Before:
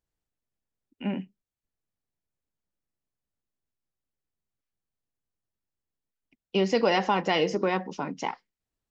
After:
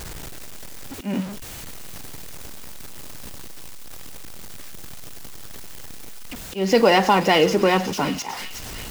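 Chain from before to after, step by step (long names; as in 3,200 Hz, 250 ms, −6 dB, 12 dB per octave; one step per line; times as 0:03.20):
converter with a step at zero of −34 dBFS
volume swells 174 ms
delay with a high-pass on its return 365 ms, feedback 67%, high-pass 2,700 Hz, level −8 dB
level +7 dB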